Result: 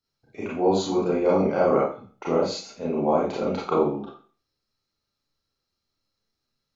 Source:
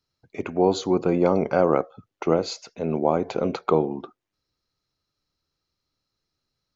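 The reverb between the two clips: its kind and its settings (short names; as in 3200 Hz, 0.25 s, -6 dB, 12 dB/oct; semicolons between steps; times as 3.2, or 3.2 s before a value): Schroeder reverb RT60 0.4 s, combs from 28 ms, DRR -6.5 dB; gain -7.5 dB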